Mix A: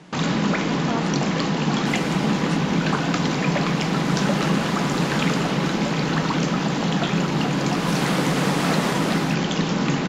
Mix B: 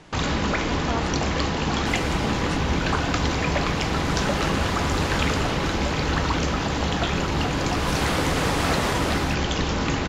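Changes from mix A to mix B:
first sound: add parametric band 140 Hz −5.5 dB 0.21 octaves
master: add low shelf with overshoot 120 Hz +13.5 dB, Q 3

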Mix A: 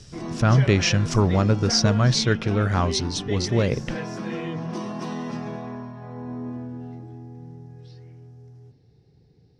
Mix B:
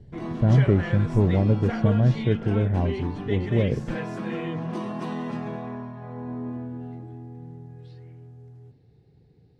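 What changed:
speech: add moving average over 35 samples
master: add parametric band 5,500 Hz −13 dB 0.53 octaves

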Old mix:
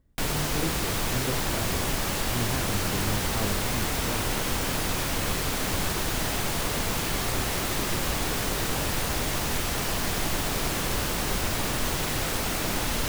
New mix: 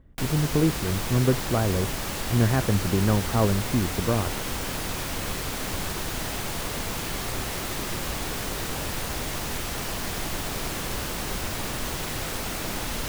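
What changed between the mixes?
speech +11.0 dB
reverb: off

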